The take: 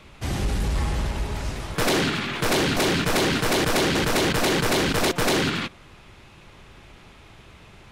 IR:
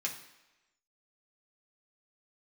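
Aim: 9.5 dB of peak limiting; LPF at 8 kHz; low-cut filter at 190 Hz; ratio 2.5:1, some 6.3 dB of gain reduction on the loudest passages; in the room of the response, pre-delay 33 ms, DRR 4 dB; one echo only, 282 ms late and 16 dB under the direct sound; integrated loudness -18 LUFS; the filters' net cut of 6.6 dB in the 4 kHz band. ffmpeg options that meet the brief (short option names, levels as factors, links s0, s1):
-filter_complex "[0:a]highpass=190,lowpass=8000,equalizer=f=4000:t=o:g=-8.5,acompressor=threshold=0.0355:ratio=2.5,alimiter=level_in=1.33:limit=0.0631:level=0:latency=1,volume=0.75,aecho=1:1:282:0.158,asplit=2[s0][s1];[1:a]atrim=start_sample=2205,adelay=33[s2];[s1][s2]afir=irnorm=-1:irlink=0,volume=0.447[s3];[s0][s3]amix=inputs=2:normalize=0,volume=6.31"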